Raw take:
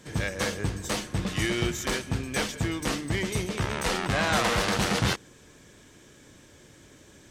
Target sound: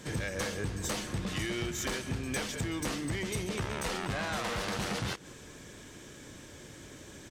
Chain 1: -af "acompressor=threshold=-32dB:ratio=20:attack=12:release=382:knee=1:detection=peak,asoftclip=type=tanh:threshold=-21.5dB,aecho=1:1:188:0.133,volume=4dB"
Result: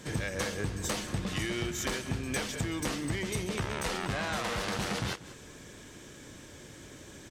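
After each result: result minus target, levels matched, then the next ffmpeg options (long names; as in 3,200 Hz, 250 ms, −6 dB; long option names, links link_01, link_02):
soft clipping: distortion −9 dB; echo-to-direct +6 dB
-af "acompressor=threshold=-32dB:ratio=20:attack=12:release=382:knee=1:detection=peak,asoftclip=type=tanh:threshold=-28.5dB,aecho=1:1:188:0.133,volume=4dB"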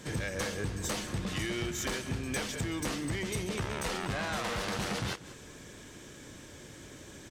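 echo-to-direct +6 dB
-af "acompressor=threshold=-32dB:ratio=20:attack=12:release=382:knee=1:detection=peak,asoftclip=type=tanh:threshold=-28.5dB,aecho=1:1:188:0.0668,volume=4dB"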